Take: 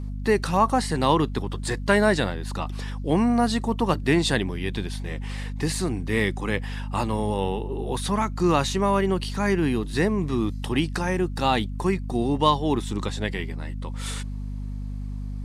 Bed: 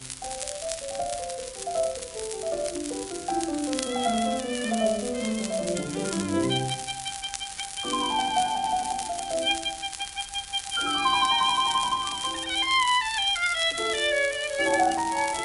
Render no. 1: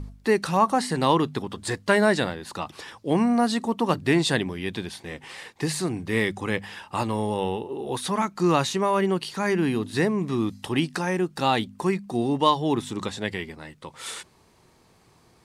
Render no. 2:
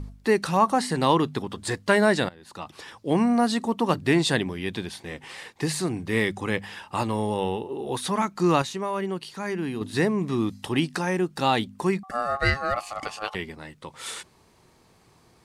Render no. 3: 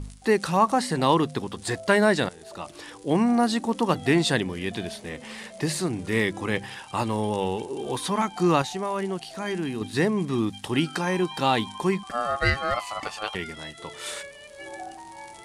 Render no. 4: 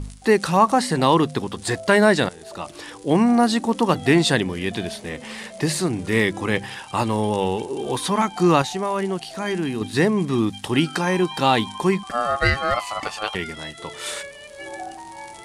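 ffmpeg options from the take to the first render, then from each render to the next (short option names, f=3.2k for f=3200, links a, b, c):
-af "bandreject=f=50:t=h:w=4,bandreject=f=100:t=h:w=4,bandreject=f=150:t=h:w=4,bandreject=f=200:t=h:w=4,bandreject=f=250:t=h:w=4"
-filter_complex "[0:a]asettb=1/sr,asplit=3[a][b][c];[a]atrim=end=12.034[d];[b]atrim=start=12.03:end=13.35,asetpts=PTS-STARTPTS,afade=t=in:d=0.004:c=qsin,afade=t=out:st=1.316:d=0.004:c=qsin,aeval=exprs='val(0)*sin(2*PI*960*n/s)':c=same[e];[c]atrim=start=13.346[f];[d][e]acrossfade=d=0.004:c1=hsin:c2=qsin[g];[g][f]acrossfade=d=0.004:c1=qsin:c2=hsin,asplit=4[h][i][j][k];[h]atrim=end=2.29,asetpts=PTS-STARTPTS,afade=t=out:st=2.286:d=0.004:c=hsin:silence=0.1[l];[i]atrim=start=2.29:end=8.622,asetpts=PTS-STARTPTS,afade=t=in:d=0.99:c=qsin:silence=0.1[m];[j]atrim=start=8.618:end=9.812,asetpts=PTS-STARTPTS,volume=-6dB[n];[k]atrim=start=9.808[o];[l][m]concat=n=2:v=0:a=1[p];[p][n]acrossfade=d=0.004:c1=hsin:c2=hsin[q];[q][o]acrossfade=d=0.004:c1=hsin:c2=hsin"
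-filter_complex "[1:a]volume=-16dB[a];[0:a][a]amix=inputs=2:normalize=0"
-af "volume=4.5dB,alimiter=limit=-3dB:level=0:latency=1"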